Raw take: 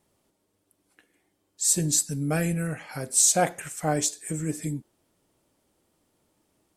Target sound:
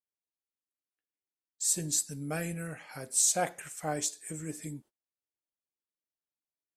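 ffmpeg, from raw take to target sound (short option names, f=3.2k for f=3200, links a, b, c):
-af "lowshelf=f=370:g=-5.5,agate=range=-29dB:threshold=-48dB:ratio=16:detection=peak,volume=-6dB"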